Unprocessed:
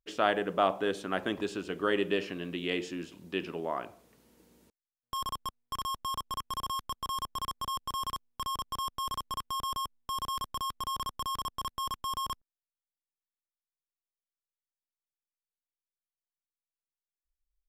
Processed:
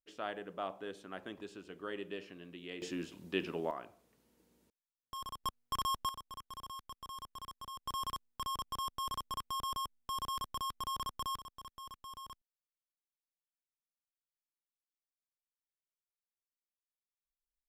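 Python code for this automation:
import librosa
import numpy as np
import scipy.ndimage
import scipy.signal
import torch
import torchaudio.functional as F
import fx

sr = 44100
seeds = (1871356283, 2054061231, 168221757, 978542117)

y = fx.gain(x, sr, db=fx.steps((0.0, -13.5), (2.82, -1.5), (3.71, -9.0), (5.44, 0.0), (6.09, -12.0), (7.86, -4.0), (11.38, -14.5)))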